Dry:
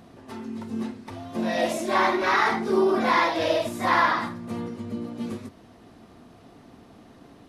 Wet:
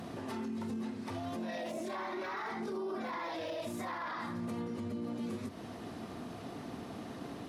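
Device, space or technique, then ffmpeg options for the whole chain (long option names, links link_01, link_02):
podcast mastering chain: -af "highpass=82,deesser=0.95,acompressor=threshold=-40dB:ratio=4,alimiter=level_in=13.5dB:limit=-24dB:level=0:latency=1:release=27,volume=-13.5dB,volume=6.5dB" -ar 48000 -c:a libmp3lame -b:a 112k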